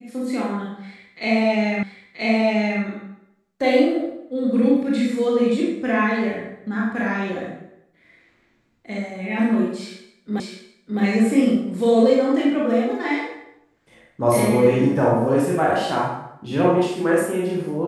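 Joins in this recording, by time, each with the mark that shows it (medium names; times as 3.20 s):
1.83 s: repeat of the last 0.98 s
10.40 s: repeat of the last 0.61 s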